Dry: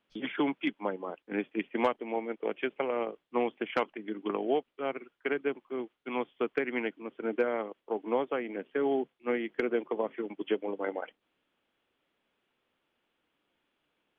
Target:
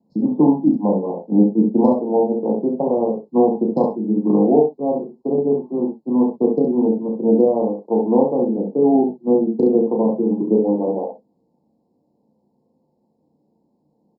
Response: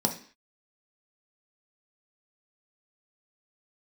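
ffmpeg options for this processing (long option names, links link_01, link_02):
-filter_complex "[0:a]asuperstop=centerf=2100:order=20:qfactor=0.7,tiltshelf=frequency=720:gain=8,aecho=1:1:33|68:0.473|0.531[link_01];[1:a]atrim=start_sample=2205,atrim=end_sample=3087,asetrate=40572,aresample=44100[link_02];[link_01][link_02]afir=irnorm=-1:irlink=0,volume=-4dB"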